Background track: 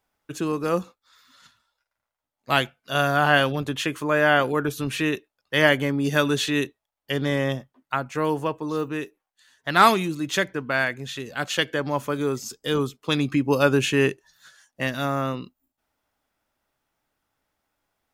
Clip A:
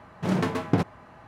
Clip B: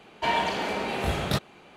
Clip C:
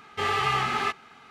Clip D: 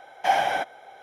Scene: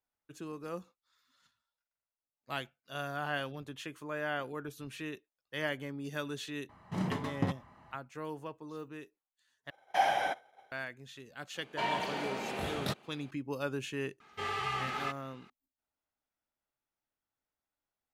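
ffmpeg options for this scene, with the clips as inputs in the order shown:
-filter_complex "[0:a]volume=-17dB[a];[1:a]aecho=1:1:1:0.38[b];[4:a]agate=range=-33dB:threshold=-41dB:ratio=3:release=100:detection=peak[c];[2:a]highpass=110[d];[a]asplit=2[e][f];[e]atrim=end=9.704[g];[c]atrim=end=1.02,asetpts=PTS-STARTPTS,volume=-6.5dB[h];[f]atrim=start=10.716[i];[b]atrim=end=1.27,asetpts=PTS-STARTPTS,volume=-10dB,afade=t=in:d=0.004:c=hsin,afade=t=out:st=1.266:d=0.004:c=hsin,adelay=6690[j];[d]atrim=end=1.76,asetpts=PTS-STARTPTS,volume=-8dB,afade=t=in:d=0.004:c=hsin,afade=t=out:st=1.756:d=0.004:c=hsin,adelay=11550[k];[3:a]atrim=end=1.3,asetpts=PTS-STARTPTS,volume=-10dB,afade=t=in:d=0.004:c=hsin,afade=t=out:st=1.296:d=0.004:c=hsin,adelay=14200[l];[g][h]acrossfade=d=0.004:c1=hsin:c2=hsin[m];[m][i]acrossfade=d=0.004:c1=hsin:c2=hsin[n];[n][j][k][l]amix=inputs=4:normalize=0"

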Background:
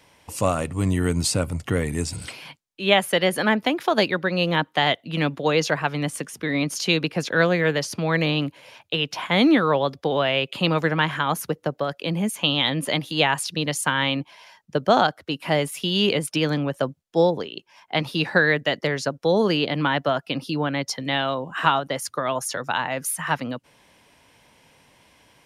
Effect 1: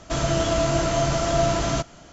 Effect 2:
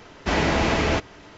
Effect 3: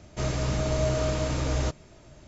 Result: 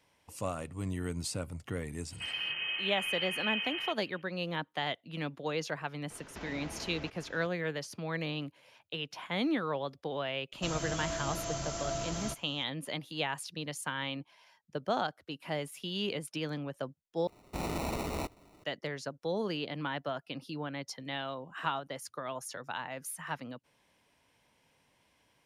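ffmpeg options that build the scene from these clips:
-filter_complex "[1:a]asplit=2[a][b];[2:a]asplit=2[c][d];[0:a]volume=-14dB[e];[a]lowpass=f=2.7k:t=q:w=0.5098,lowpass=f=2.7k:t=q:w=0.6013,lowpass=f=2.7k:t=q:w=0.9,lowpass=f=2.7k:t=q:w=2.563,afreqshift=-3200[f];[c]acompressor=threshold=-35dB:ratio=6:attack=3.2:release=140:knee=1:detection=peak[g];[b]aemphasis=mode=production:type=50fm[h];[d]acrusher=samples=27:mix=1:aa=0.000001[i];[e]asplit=2[j][k];[j]atrim=end=17.274[l];[i]atrim=end=1.37,asetpts=PTS-STARTPTS,volume=-14dB[m];[k]atrim=start=18.636[n];[f]atrim=end=2.12,asetpts=PTS-STARTPTS,volume=-14dB,afade=t=in:d=0.004:c=hsin,afade=t=out:st=2.116:d=0.004:c=hsin,adelay=2100[o];[g]atrim=end=1.37,asetpts=PTS-STARTPTS,volume=-7.5dB,afade=t=in:d=0.004:c=hsin,afade=t=out:st=1.366:d=0.004:c=hsin,adelay=269010S[p];[h]atrim=end=2.12,asetpts=PTS-STARTPTS,volume=-15.5dB,afade=t=in:d=0.004:c=hsin,afade=t=out:st=2.116:d=0.004:c=hsin,adelay=10520[q];[l][m]acrossfade=d=0.004:c1=hsin:c2=hsin[r];[r][n]acrossfade=d=0.004:c1=hsin:c2=hsin[s];[s][o][p][q]amix=inputs=4:normalize=0"

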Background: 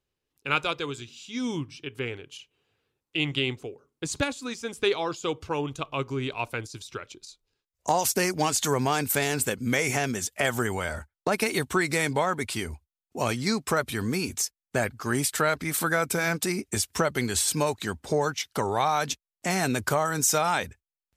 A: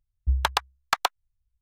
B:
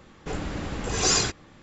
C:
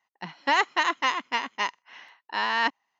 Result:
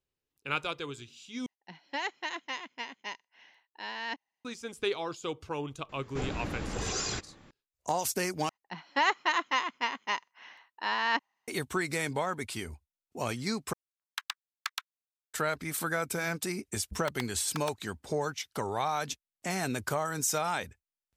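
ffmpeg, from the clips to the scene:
-filter_complex "[3:a]asplit=2[a][b];[1:a]asplit=2[c][d];[0:a]volume=-6.5dB[e];[a]equalizer=f=1.2k:t=o:w=0.54:g=-11.5[f];[2:a]alimiter=limit=-19dB:level=0:latency=1:release=80[g];[c]highpass=f=1.4k:w=0.5412,highpass=f=1.4k:w=1.3066[h];[d]acrusher=bits=2:mix=0:aa=0.5[i];[e]asplit=4[j][k][l][m];[j]atrim=end=1.464[n];[f]atrim=end=2.99,asetpts=PTS-STARTPTS,volume=-9.5dB[o];[k]atrim=start=4.446:end=8.494[p];[b]atrim=end=2.99,asetpts=PTS-STARTPTS,volume=-4dB[q];[l]atrim=start=11.476:end=13.734[r];[h]atrim=end=1.61,asetpts=PTS-STARTPTS,volume=-9dB[s];[m]atrim=start=15.336[t];[g]atrim=end=1.62,asetpts=PTS-STARTPTS,volume=-4.5dB,afade=t=in:d=0.004:c=hsin,afade=t=out:st=1.616:d=0.004:c=hsin,adelay=259749S[u];[i]atrim=end=1.61,asetpts=PTS-STARTPTS,volume=-17.5dB,afade=t=in:d=0.004:c=hsin,afade=t=out:st=1.606:d=0.004:c=hsin,adelay=16630[v];[n][o]acrossfade=d=0.004:c1=hsin:c2=hsin[w];[w][p]acrossfade=d=0.004:c1=hsin:c2=hsin[x];[x][q]acrossfade=d=0.004:c1=hsin:c2=hsin[y];[y][r]acrossfade=d=0.004:c1=hsin:c2=hsin[z];[z][s]acrossfade=d=0.004:c1=hsin:c2=hsin[aa];[aa][t]acrossfade=d=0.004:c1=hsin:c2=hsin[ab];[ab][u][v]amix=inputs=3:normalize=0"

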